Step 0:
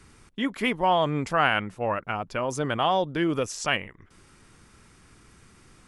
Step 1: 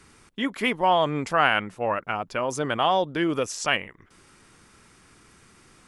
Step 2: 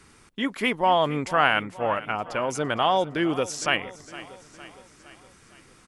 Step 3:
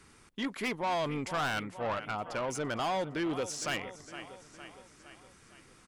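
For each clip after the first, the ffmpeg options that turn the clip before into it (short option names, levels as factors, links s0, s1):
-af "lowshelf=f=150:g=-8.5,volume=1.26"
-af "aecho=1:1:460|920|1380|1840|2300:0.141|0.0777|0.0427|0.0235|0.0129"
-af "asoftclip=type=tanh:threshold=0.0708,volume=0.596"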